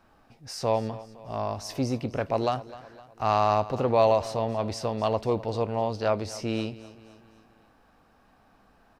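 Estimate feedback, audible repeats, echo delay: 50%, 3, 256 ms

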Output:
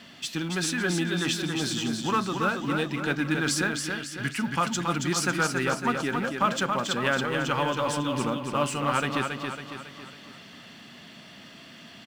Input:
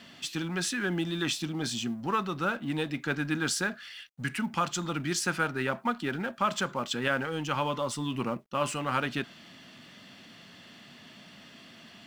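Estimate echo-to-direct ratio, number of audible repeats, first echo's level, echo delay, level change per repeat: −4.0 dB, 5, −5.0 dB, 276 ms, −6.0 dB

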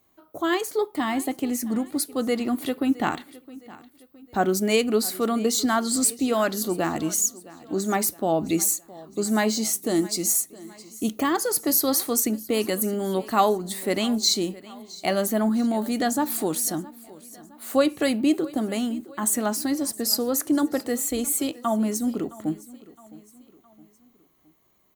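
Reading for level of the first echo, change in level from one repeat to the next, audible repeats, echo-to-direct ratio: −20.0 dB, −6.5 dB, 3, −19.0 dB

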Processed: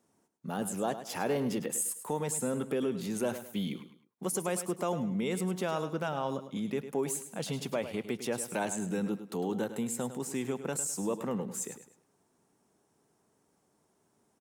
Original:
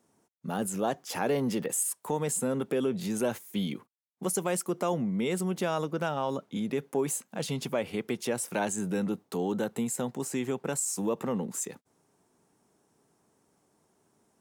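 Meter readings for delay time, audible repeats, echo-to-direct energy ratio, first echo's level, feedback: 104 ms, 3, −11.0 dB, −11.5 dB, 33%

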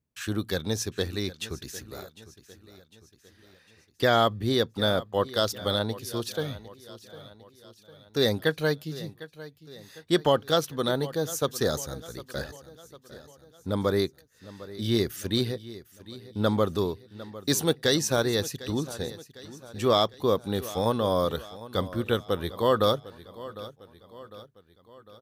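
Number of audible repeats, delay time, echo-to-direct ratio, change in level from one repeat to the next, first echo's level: 4, 753 ms, −15.5 dB, −6.0 dB, −17.0 dB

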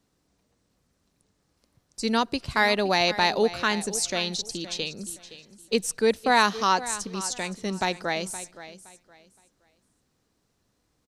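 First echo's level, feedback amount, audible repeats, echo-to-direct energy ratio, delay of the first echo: −15.0 dB, 25%, 2, −14.5 dB, 518 ms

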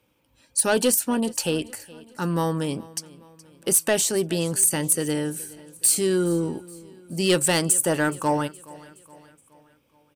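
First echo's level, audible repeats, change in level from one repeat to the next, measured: −21.0 dB, 3, −6.0 dB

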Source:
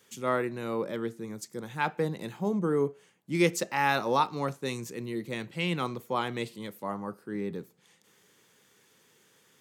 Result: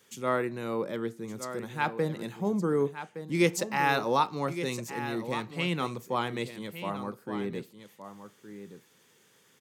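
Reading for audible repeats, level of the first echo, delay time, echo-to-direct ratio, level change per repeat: 1, −11.0 dB, 1,166 ms, −11.0 dB, repeats not evenly spaced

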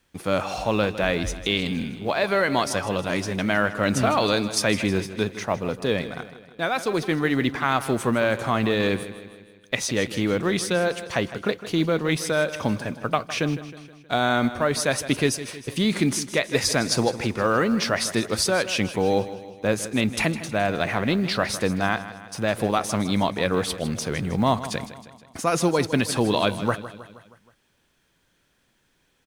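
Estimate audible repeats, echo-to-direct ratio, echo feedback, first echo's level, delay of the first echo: 4, −12.5 dB, 54%, −14.0 dB, 158 ms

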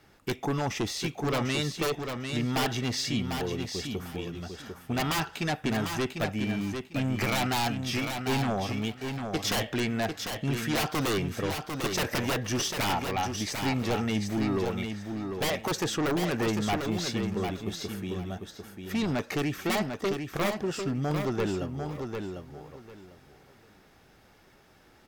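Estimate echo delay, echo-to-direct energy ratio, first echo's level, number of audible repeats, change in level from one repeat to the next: 748 ms, −6.0 dB, −6.0 dB, 3, −13.5 dB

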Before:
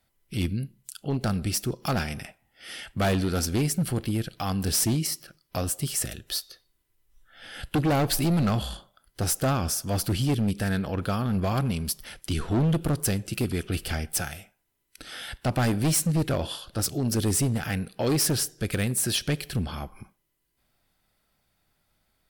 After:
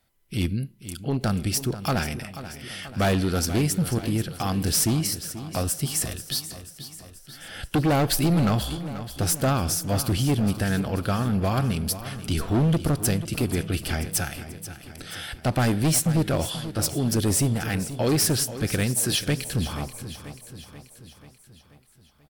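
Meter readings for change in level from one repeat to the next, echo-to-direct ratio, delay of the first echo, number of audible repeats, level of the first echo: −5.0 dB, −11.5 dB, 485 ms, 5, −13.0 dB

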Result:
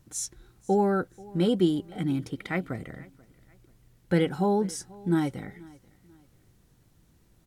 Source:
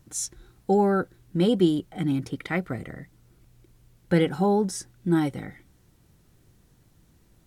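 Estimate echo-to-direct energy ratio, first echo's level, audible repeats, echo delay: −22.5 dB, −23.0 dB, 2, 486 ms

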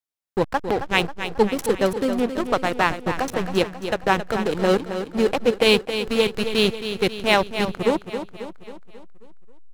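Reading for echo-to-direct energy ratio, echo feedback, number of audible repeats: −8.0 dB, 53%, 5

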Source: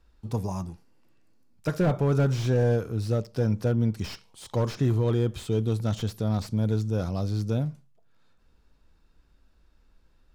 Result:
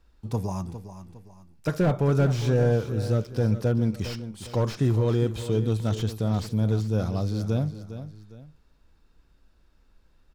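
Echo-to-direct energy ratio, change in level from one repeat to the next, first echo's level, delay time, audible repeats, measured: −11.5 dB, −8.5 dB, −12.0 dB, 407 ms, 2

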